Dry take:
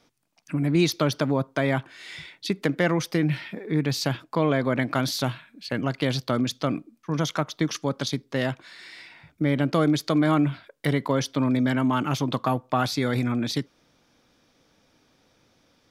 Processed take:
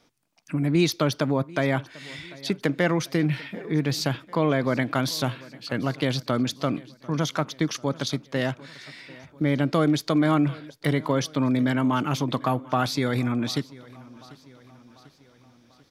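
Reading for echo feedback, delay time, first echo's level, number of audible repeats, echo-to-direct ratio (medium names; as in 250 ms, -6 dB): 53%, 743 ms, -21.5 dB, 3, -20.0 dB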